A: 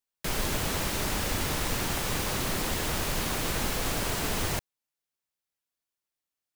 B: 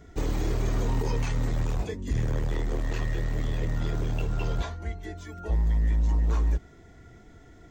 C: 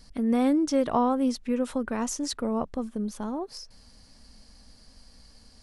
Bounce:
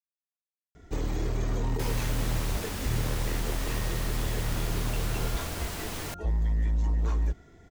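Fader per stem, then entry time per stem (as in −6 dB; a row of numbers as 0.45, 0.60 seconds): −6.5 dB, −2.5 dB, muted; 1.55 s, 0.75 s, muted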